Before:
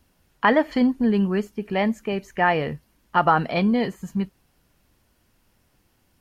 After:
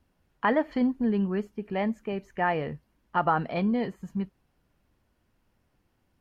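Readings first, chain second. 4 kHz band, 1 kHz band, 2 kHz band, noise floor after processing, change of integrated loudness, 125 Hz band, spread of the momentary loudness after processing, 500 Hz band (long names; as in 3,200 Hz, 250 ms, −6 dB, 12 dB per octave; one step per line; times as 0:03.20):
−10.5 dB, −6.5 dB, −8.0 dB, −73 dBFS, −6.0 dB, −5.5 dB, 9 LU, −6.0 dB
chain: high-shelf EQ 3,400 Hz −11 dB
level −5.5 dB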